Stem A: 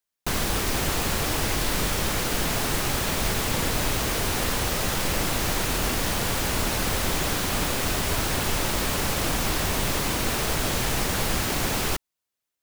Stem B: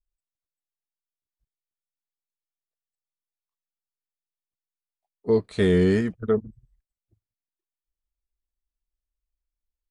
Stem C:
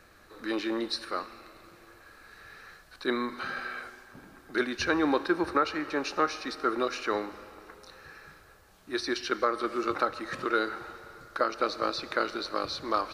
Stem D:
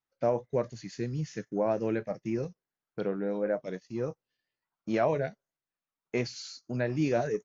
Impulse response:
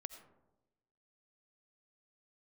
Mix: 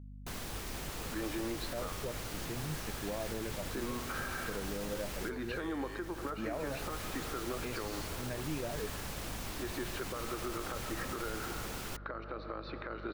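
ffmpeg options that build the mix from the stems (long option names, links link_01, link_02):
-filter_complex "[0:a]volume=-16.5dB[link_01];[1:a]highpass=830,volume=-14dB,asplit=2[link_02][link_03];[2:a]lowpass=frequency=3800:width=0.5412,lowpass=frequency=3800:width=1.3066,highshelf=frequency=2500:gain=-11.5,acompressor=threshold=-31dB:ratio=6,adelay=700,volume=-0.5dB[link_04];[3:a]adelay=1500,volume=-7.5dB[link_05];[link_03]apad=whole_len=556559[link_06];[link_01][link_06]sidechaincompress=threshold=-60dB:ratio=5:attack=29:release=401[link_07];[link_02][link_04][link_05]amix=inputs=3:normalize=0,acompressor=threshold=-33dB:ratio=6,volume=0dB[link_08];[link_07][link_08]amix=inputs=2:normalize=0,aeval=exprs='val(0)+0.00447*(sin(2*PI*50*n/s)+sin(2*PI*2*50*n/s)/2+sin(2*PI*3*50*n/s)/3+sin(2*PI*4*50*n/s)/4+sin(2*PI*5*50*n/s)/5)':channel_layout=same,alimiter=level_in=4dB:limit=-24dB:level=0:latency=1:release=50,volume=-4dB"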